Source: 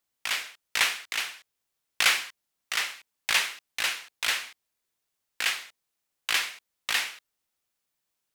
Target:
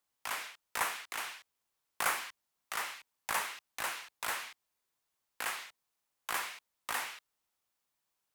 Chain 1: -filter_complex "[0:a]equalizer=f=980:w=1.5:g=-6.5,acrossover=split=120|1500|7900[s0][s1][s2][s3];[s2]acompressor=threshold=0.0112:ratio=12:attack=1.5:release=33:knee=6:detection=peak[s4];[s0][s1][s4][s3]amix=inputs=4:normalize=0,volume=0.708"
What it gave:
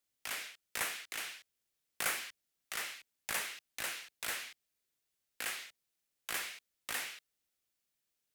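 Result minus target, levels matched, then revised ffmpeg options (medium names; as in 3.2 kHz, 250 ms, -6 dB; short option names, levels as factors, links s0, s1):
1 kHz band -7.0 dB
-filter_complex "[0:a]equalizer=f=980:w=1.5:g=5.5,acrossover=split=120|1500|7900[s0][s1][s2][s3];[s2]acompressor=threshold=0.0112:ratio=12:attack=1.5:release=33:knee=6:detection=peak[s4];[s0][s1][s4][s3]amix=inputs=4:normalize=0,volume=0.708"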